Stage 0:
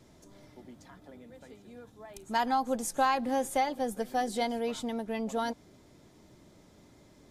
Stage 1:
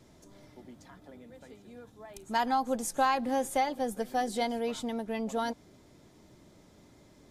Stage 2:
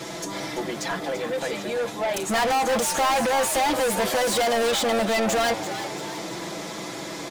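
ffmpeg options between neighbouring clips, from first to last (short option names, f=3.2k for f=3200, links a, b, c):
-af anull
-filter_complex "[0:a]aecho=1:1:6:0.96,asplit=2[a][b];[b]highpass=f=720:p=1,volume=38dB,asoftclip=type=tanh:threshold=-12.5dB[c];[a][c]amix=inputs=2:normalize=0,lowpass=f=6.5k:p=1,volume=-6dB,asplit=7[d][e][f][g][h][i][j];[e]adelay=338,afreqshift=100,volume=-11dB[k];[f]adelay=676,afreqshift=200,volume=-16.7dB[l];[g]adelay=1014,afreqshift=300,volume=-22.4dB[m];[h]adelay=1352,afreqshift=400,volume=-28dB[n];[i]adelay=1690,afreqshift=500,volume=-33.7dB[o];[j]adelay=2028,afreqshift=600,volume=-39.4dB[p];[d][k][l][m][n][o][p]amix=inputs=7:normalize=0,volume=-3.5dB"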